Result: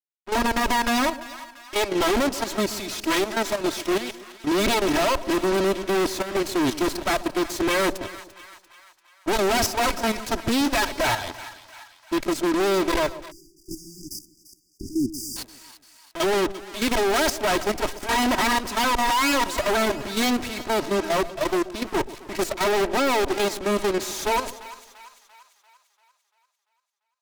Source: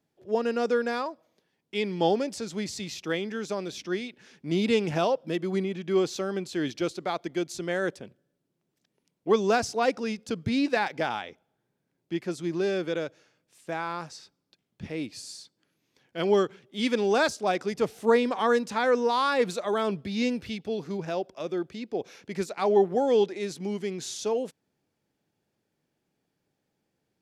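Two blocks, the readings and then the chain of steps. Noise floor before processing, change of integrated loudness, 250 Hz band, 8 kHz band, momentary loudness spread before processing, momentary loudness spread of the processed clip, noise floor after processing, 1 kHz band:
−80 dBFS, +4.5 dB, +4.5 dB, +11.5 dB, 12 LU, 14 LU, −68 dBFS, +6.5 dB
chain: lower of the sound and its delayed copy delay 3.1 ms
fuzz pedal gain 42 dB, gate −46 dBFS
output level in coarse steps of 16 dB
soft clipping −19 dBFS, distortion −14 dB
echo with a time of its own for lows and highs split 870 Hz, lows 130 ms, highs 343 ms, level −15 dB
time-frequency box erased 0:13.31–0:15.37, 400–4,700 Hz

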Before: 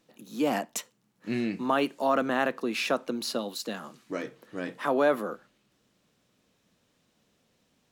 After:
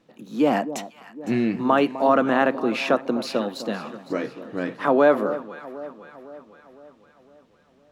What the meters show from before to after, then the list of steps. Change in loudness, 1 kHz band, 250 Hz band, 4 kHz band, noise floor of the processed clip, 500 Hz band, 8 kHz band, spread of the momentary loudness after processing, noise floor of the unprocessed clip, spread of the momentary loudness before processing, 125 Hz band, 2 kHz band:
+7.0 dB, +7.0 dB, +8.0 dB, +1.5 dB, −58 dBFS, +7.5 dB, −3.5 dB, 17 LU, −72 dBFS, 12 LU, +8.0 dB, +5.0 dB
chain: low-pass filter 2,000 Hz 6 dB per octave
delay that swaps between a low-pass and a high-pass 254 ms, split 1,000 Hz, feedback 70%, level −12.5 dB
level +7.5 dB

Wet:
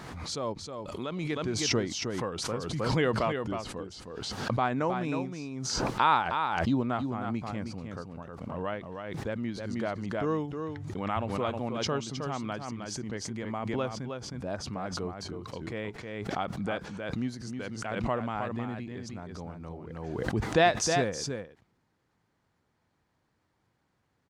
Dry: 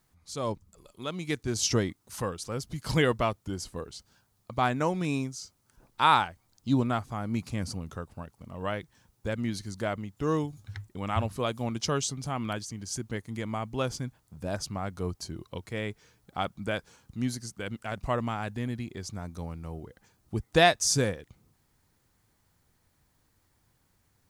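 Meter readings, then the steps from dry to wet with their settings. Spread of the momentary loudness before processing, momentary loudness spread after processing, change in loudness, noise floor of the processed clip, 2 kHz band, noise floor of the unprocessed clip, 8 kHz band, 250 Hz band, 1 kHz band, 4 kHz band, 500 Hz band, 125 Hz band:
15 LU, 13 LU, −1.0 dB, −75 dBFS, −1.0 dB, −71 dBFS, −3.5 dB, 0.0 dB, −0.5 dB, −1.5 dB, 0.0 dB, −2.0 dB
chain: high-pass filter 210 Hz 6 dB per octave
head-to-tape spacing loss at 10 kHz 20 dB
single-tap delay 314 ms −6.5 dB
background raised ahead of every attack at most 31 dB per second

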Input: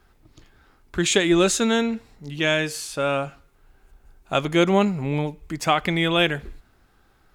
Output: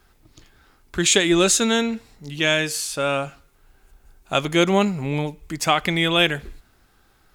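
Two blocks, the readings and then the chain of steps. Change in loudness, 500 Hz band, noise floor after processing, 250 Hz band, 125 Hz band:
+2.0 dB, 0.0 dB, −59 dBFS, 0.0 dB, 0.0 dB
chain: high-shelf EQ 3,000 Hz +7 dB

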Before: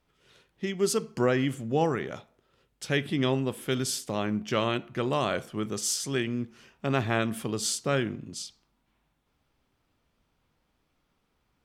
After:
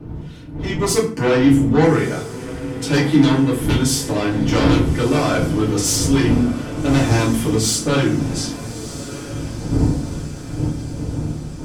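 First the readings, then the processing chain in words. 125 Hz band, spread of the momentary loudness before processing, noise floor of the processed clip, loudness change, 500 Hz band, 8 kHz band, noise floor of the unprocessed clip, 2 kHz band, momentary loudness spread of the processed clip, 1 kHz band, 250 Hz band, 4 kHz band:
+15.0 dB, 10 LU, −31 dBFS, +11.0 dB, +9.0 dB, +10.5 dB, −75 dBFS, +9.0 dB, 14 LU, +8.5 dB, +15.0 dB, +9.5 dB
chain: wind on the microphone 190 Hz −38 dBFS
sine wavefolder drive 10 dB, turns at −10.5 dBFS
feedback delay with all-pass diffusion 1,271 ms, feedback 56%, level −13 dB
feedback delay network reverb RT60 0.45 s, low-frequency decay 1.5×, high-frequency decay 0.7×, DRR −5.5 dB
level −8 dB

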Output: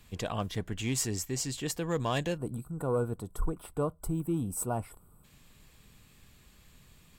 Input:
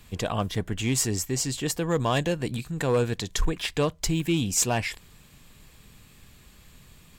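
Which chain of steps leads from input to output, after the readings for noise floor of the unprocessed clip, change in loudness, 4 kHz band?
−54 dBFS, −6.5 dB, −9.5 dB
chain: gain on a spectral selection 0:02.37–0:05.24, 1,500–7,700 Hz −21 dB
level −6 dB

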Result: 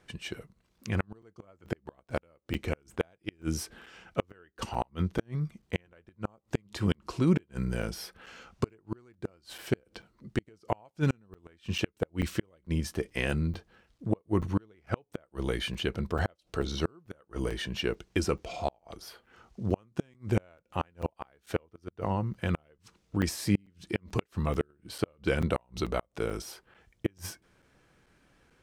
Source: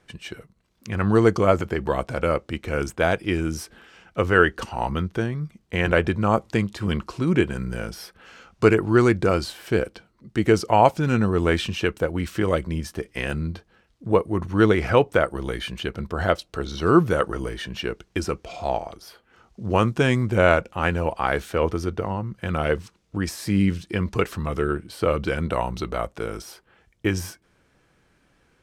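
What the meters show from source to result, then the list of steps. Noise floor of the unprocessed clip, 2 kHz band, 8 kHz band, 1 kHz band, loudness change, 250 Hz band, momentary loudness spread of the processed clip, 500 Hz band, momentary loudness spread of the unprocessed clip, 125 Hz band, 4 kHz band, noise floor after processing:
−64 dBFS, −13.0 dB, −4.5 dB, −14.0 dB, −10.5 dB, −9.0 dB, 13 LU, −13.0 dB, 13 LU, −7.5 dB, −6.5 dB, −73 dBFS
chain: gate with flip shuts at −12 dBFS, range −38 dB
dynamic equaliser 1,400 Hz, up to −3 dB, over −48 dBFS, Q 1.7
regular buffer underruns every 0.44 s, samples 256, zero, from 0:00.34
level −2 dB

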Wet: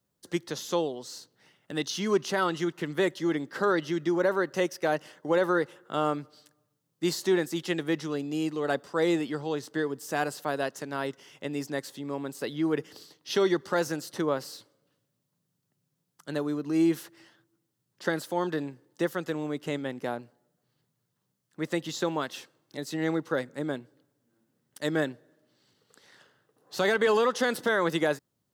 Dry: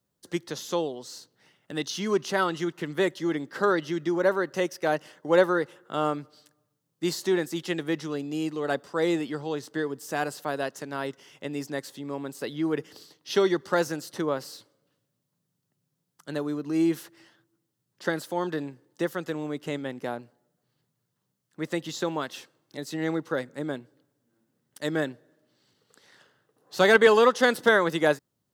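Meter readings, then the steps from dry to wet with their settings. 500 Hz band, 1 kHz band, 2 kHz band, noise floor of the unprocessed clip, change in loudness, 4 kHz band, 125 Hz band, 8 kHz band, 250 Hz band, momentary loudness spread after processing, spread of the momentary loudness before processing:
−2.5 dB, −2.5 dB, −3.5 dB, −79 dBFS, −2.0 dB, −1.5 dB, −0.5 dB, −0.5 dB, −0.5 dB, 11 LU, 14 LU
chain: brickwall limiter −14.5 dBFS, peak gain reduction 10 dB

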